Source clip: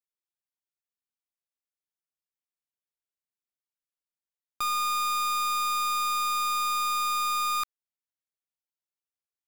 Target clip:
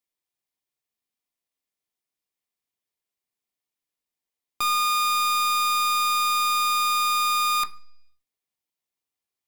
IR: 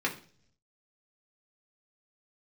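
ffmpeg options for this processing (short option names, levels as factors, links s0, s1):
-filter_complex "[0:a]equalizer=f=1500:t=o:w=0.42:g=-7.5,asplit=2[s0][s1];[1:a]atrim=start_sample=2205,asetrate=40572,aresample=44100[s2];[s1][s2]afir=irnorm=-1:irlink=0,volume=0.266[s3];[s0][s3]amix=inputs=2:normalize=0,volume=1.58"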